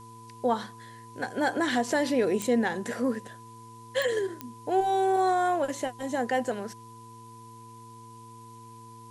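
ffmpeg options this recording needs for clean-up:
-af "adeclick=t=4,bandreject=f=114.5:t=h:w=4,bandreject=f=229:t=h:w=4,bandreject=f=343.5:t=h:w=4,bandreject=f=458:t=h:w=4,bandreject=f=1000:w=30,agate=range=0.0891:threshold=0.0112"

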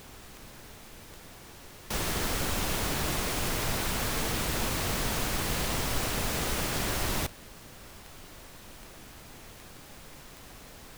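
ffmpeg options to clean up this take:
-af "adeclick=t=4,afftdn=nr=30:nf=-49"

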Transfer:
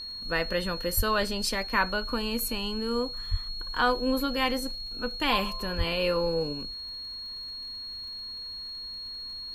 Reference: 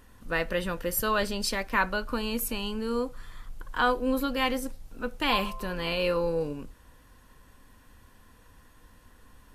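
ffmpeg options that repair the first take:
-filter_complex "[0:a]adeclick=t=4,bandreject=f=4300:w=30,asplit=3[s0][s1][s2];[s0]afade=t=out:st=0.96:d=0.02[s3];[s1]highpass=f=140:w=0.5412,highpass=f=140:w=1.3066,afade=t=in:st=0.96:d=0.02,afade=t=out:st=1.08:d=0.02[s4];[s2]afade=t=in:st=1.08:d=0.02[s5];[s3][s4][s5]amix=inputs=3:normalize=0,asplit=3[s6][s7][s8];[s6]afade=t=out:st=3.3:d=0.02[s9];[s7]highpass=f=140:w=0.5412,highpass=f=140:w=1.3066,afade=t=in:st=3.3:d=0.02,afade=t=out:st=3.42:d=0.02[s10];[s8]afade=t=in:st=3.42:d=0.02[s11];[s9][s10][s11]amix=inputs=3:normalize=0,asplit=3[s12][s13][s14];[s12]afade=t=out:st=5.77:d=0.02[s15];[s13]highpass=f=140:w=0.5412,highpass=f=140:w=1.3066,afade=t=in:st=5.77:d=0.02,afade=t=out:st=5.89:d=0.02[s16];[s14]afade=t=in:st=5.89:d=0.02[s17];[s15][s16][s17]amix=inputs=3:normalize=0"

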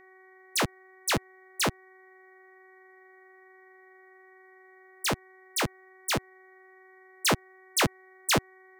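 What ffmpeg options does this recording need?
-af "bandreject=f=375.1:t=h:w=4,bandreject=f=750.2:t=h:w=4,bandreject=f=1125.3:t=h:w=4,bandreject=f=1500.4:t=h:w=4,bandreject=f=1875.5:t=h:w=4,bandreject=f=2250.6:t=h:w=4,bandreject=f=1900:w=30"

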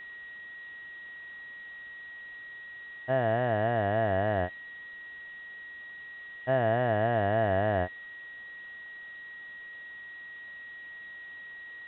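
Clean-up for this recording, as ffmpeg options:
-af "bandreject=f=1900:w=30,afwtdn=0.0022"

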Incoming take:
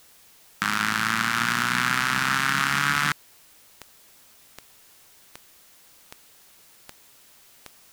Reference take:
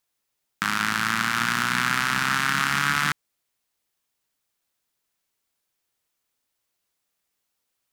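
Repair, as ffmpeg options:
-af "adeclick=t=4,afftdn=nr=25:nf=-54"

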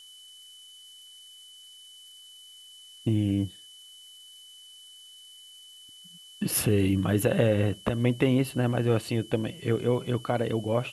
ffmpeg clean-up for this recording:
-af "bandreject=f=3000:w=30,afftdn=nr=22:nf=-50"

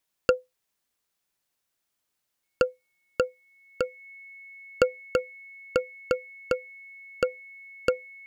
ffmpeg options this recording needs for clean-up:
-af "bandreject=f=2200:w=30"

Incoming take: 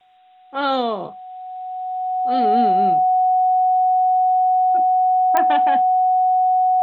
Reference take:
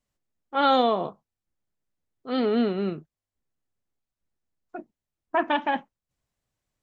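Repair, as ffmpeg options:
-af "adeclick=t=4,bandreject=f=740:w=30,agate=range=0.0891:threshold=0.0398"

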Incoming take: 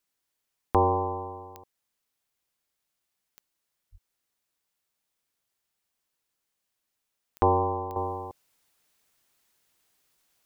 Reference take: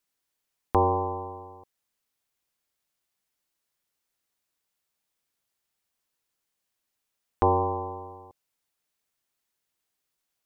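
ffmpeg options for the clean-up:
-filter_complex "[0:a]adeclick=t=4,asplit=3[s0][s1][s2];[s0]afade=t=out:st=3.91:d=0.02[s3];[s1]highpass=f=140:w=0.5412,highpass=f=140:w=1.3066,afade=t=in:st=3.91:d=0.02,afade=t=out:st=4.03:d=0.02[s4];[s2]afade=t=in:st=4.03:d=0.02[s5];[s3][s4][s5]amix=inputs=3:normalize=0,asetnsamples=n=441:p=0,asendcmd='7.96 volume volume -10.5dB',volume=1"

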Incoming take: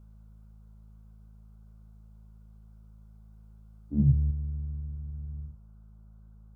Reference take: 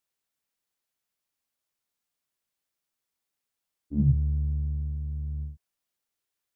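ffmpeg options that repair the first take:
-af "bandreject=f=53.4:t=h:w=4,bandreject=f=106.8:t=h:w=4,bandreject=f=160.2:t=h:w=4,bandreject=f=213.6:t=h:w=4,agate=range=0.0891:threshold=0.00631,asetnsamples=n=441:p=0,asendcmd='4.31 volume volume 5.5dB',volume=1"

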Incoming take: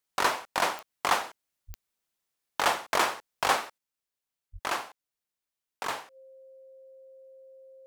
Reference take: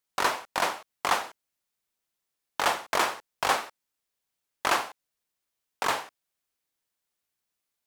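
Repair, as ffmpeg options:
-filter_complex "[0:a]adeclick=t=4,bandreject=f=530:w=30,asplit=3[s0][s1][s2];[s0]afade=t=out:st=1.67:d=0.02[s3];[s1]highpass=f=140:w=0.5412,highpass=f=140:w=1.3066,afade=t=in:st=1.67:d=0.02,afade=t=out:st=1.79:d=0.02[s4];[s2]afade=t=in:st=1.79:d=0.02[s5];[s3][s4][s5]amix=inputs=3:normalize=0,asplit=3[s6][s7][s8];[s6]afade=t=out:st=4.52:d=0.02[s9];[s7]highpass=f=140:w=0.5412,highpass=f=140:w=1.3066,afade=t=in:st=4.52:d=0.02,afade=t=out:st=4.64:d=0.02[s10];[s8]afade=t=in:st=4.64:d=0.02[s11];[s9][s10][s11]amix=inputs=3:normalize=0,asetnsamples=n=441:p=0,asendcmd='3.78 volume volume 6dB',volume=1"

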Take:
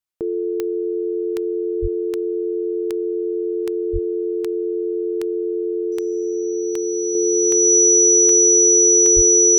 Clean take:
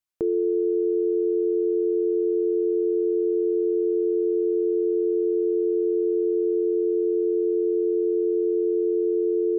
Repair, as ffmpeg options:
-filter_complex "[0:a]adeclick=t=4,bandreject=f=5900:w=30,asplit=3[s0][s1][s2];[s0]afade=t=out:st=1.81:d=0.02[s3];[s1]highpass=f=140:w=0.5412,highpass=f=140:w=1.3066,afade=t=in:st=1.81:d=0.02,afade=t=out:st=1.93:d=0.02[s4];[s2]afade=t=in:st=1.93:d=0.02[s5];[s3][s4][s5]amix=inputs=3:normalize=0,asplit=3[s6][s7][s8];[s6]afade=t=out:st=3.92:d=0.02[s9];[s7]highpass=f=140:w=0.5412,highpass=f=140:w=1.3066,afade=t=in:st=3.92:d=0.02,afade=t=out:st=4.04:d=0.02[s10];[s8]afade=t=in:st=4.04:d=0.02[s11];[s9][s10][s11]amix=inputs=3:normalize=0,asplit=3[s12][s13][s14];[s12]afade=t=out:st=9.15:d=0.02[s15];[s13]highpass=f=140:w=0.5412,highpass=f=140:w=1.3066,afade=t=in:st=9.15:d=0.02,afade=t=out:st=9.27:d=0.02[s16];[s14]afade=t=in:st=9.27:d=0.02[s17];[s15][s16][s17]amix=inputs=3:normalize=0,asetnsamples=n=441:p=0,asendcmd='7.15 volume volume -4dB',volume=1"

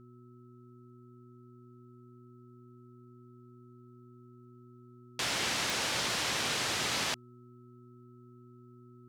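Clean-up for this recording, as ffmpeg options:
-af "adeclick=t=4,bandreject=f=122.1:t=h:w=4,bandreject=f=244.2:t=h:w=4,bandreject=f=366.3:t=h:w=4,bandreject=f=1300:w=30"

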